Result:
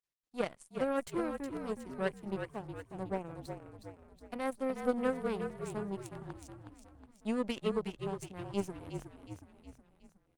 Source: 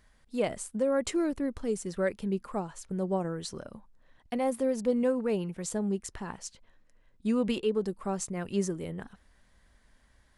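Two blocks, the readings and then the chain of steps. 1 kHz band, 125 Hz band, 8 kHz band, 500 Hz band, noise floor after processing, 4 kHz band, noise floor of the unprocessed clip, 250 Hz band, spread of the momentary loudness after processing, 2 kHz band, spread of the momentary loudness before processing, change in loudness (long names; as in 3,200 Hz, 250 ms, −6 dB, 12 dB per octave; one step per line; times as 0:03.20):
−2.5 dB, −6.0 dB, −14.0 dB, −6.0 dB, −73 dBFS, −6.0 dB, −64 dBFS, −7.0 dB, 18 LU, −2.0 dB, 12 LU, −6.5 dB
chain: power curve on the samples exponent 2
echo with shifted repeats 366 ms, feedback 53%, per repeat −43 Hz, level −7 dB
Opus 32 kbit/s 48,000 Hz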